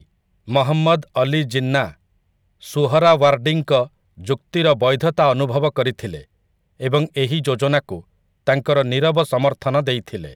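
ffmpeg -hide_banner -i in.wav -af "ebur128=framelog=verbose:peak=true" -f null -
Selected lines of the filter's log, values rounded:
Integrated loudness:
  I:         -18.4 LUFS
  Threshold: -29.2 LUFS
Loudness range:
  LRA:         3.8 LU
  Threshold: -39.1 LUFS
  LRA low:   -21.2 LUFS
  LRA high:  -17.4 LUFS
True peak:
  Peak:       -3.4 dBFS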